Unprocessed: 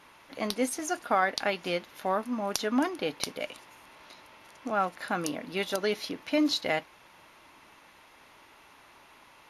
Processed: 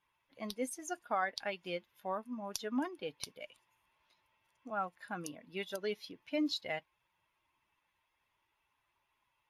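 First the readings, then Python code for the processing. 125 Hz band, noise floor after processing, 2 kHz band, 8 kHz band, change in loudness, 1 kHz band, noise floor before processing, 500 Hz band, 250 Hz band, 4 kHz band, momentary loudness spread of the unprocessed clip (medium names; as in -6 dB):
-9.5 dB, -81 dBFS, -9.5 dB, -9.5 dB, -9.0 dB, -9.5 dB, -57 dBFS, -9.5 dB, -9.0 dB, -9.5 dB, 8 LU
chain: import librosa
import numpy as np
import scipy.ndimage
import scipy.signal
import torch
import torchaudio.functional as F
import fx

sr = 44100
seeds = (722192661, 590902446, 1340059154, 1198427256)

y = fx.bin_expand(x, sr, power=1.5)
y = y * 10.0 ** (-7.0 / 20.0)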